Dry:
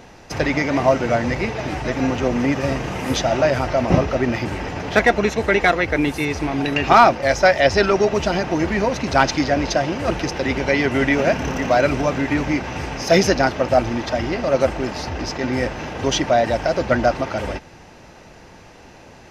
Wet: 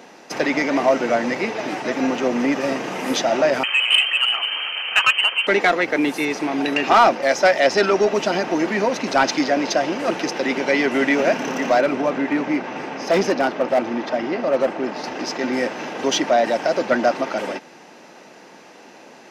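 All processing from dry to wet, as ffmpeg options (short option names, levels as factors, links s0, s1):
-filter_complex "[0:a]asettb=1/sr,asplit=3[s0][s1][s2];[s0]atrim=end=3.634[s3];[s1]atrim=start=3.63:end=5.47,asetpts=PTS-STARTPTS,afade=t=in:d=0.004:c=qsin,afade=t=out:st=1.836:d=0.004:c=qsin,lowpass=f=2700:t=q:w=0.5098,lowpass=f=2700:t=q:w=0.6013,lowpass=f=2700:t=q:w=0.9,lowpass=f=2700:t=q:w=2.563,afreqshift=-3200,highpass=f=350:p=1[s4];[s2]atrim=start=5.466[s5];[s3][s4]acrossfade=d=0.004:c1=hsin:c2=qsin[s6];[s6][s5]acrossfade=d=0.004:c1=qsin:c2=hsin,asettb=1/sr,asplit=3[s7][s8][s9];[s7]atrim=end=11.804[s10];[s8]atrim=start=11.8:end=15.04,asetpts=PTS-STARTPTS,afade=t=in:d=0.004:c=qsin,afade=t=out:st=3.236:d=0.004:c=qsin,lowpass=f=2200:p=1,volume=3.76,asoftclip=hard,volume=0.266[s11];[s9]atrim=start=15.036[s12];[s10][s11]acrossfade=d=0.004:c1=hsin:c2=qsin[s13];[s13][s12]acrossfade=d=0.004:c1=qsin:c2=hsin,highpass=f=210:w=0.5412,highpass=f=210:w=1.3066,acontrast=48,volume=0.562"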